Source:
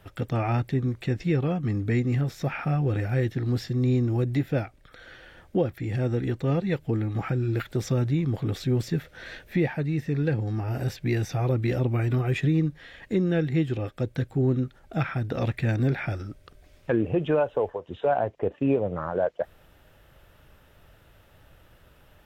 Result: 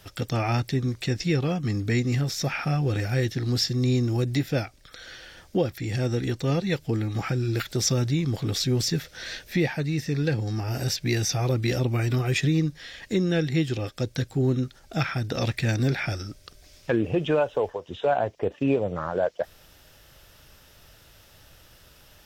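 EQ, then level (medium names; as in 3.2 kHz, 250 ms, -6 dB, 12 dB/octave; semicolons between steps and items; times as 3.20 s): treble shelf 3.2 kHz +10 dB; peaking EQ 5.3 kHz +10 dB 0.86 oct; 0.0 dB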